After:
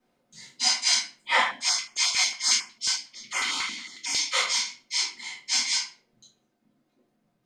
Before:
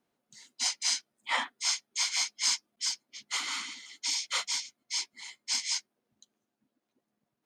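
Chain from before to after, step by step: treble shelf 8.4 kHz -6.5 dB; simulated room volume 32 m³, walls mixed, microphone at 2 m; 1.42–4.19 s: step-sequenced notch 11 Hz 260–3900 Hz; trim -2 dB

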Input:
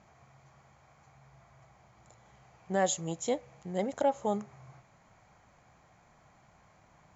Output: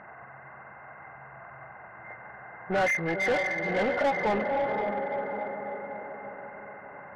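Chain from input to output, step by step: knee-point frequency compression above 1.4 kHz 4:1; echo that smears into a reverb 524 ms, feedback 52%, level -9 dB; overdrive pedal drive 26 dB, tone 2 kHz, clips at -15.5 dBFS; trim -2 dB

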